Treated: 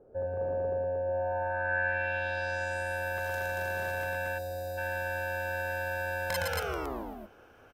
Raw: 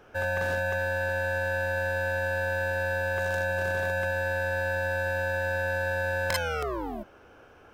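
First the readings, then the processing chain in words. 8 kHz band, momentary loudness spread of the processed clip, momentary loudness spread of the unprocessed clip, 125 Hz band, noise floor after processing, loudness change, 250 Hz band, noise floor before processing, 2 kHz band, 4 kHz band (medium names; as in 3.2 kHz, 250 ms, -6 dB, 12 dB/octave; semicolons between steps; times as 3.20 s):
-2.5 dB, 6 LU, 2 LU, -6.5 dB, -57 dBFS, -4.0 dB, -4.5 dB, -54 dBFS, -4.5 dB, -4.0 dB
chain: loudspeakers at several distances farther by 39 m -3 dB, 79 m -2 dB; time-frequency box 4.38–4.78 s, 770–3600 Hz -16 dB; low-pass sweep 500 Hz -> 14 kHz, 1.05–3.09 s; trim -6.5 dB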